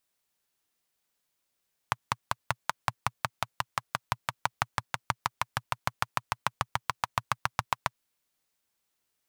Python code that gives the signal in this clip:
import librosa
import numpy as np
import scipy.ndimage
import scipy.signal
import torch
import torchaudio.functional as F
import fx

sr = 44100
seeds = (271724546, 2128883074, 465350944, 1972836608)

y = fx.engine_single_rev(sr, seeds[0], length_s=6.05, rpm=600, resonances_hz=(120.0, 1000.0), end_rpm=900)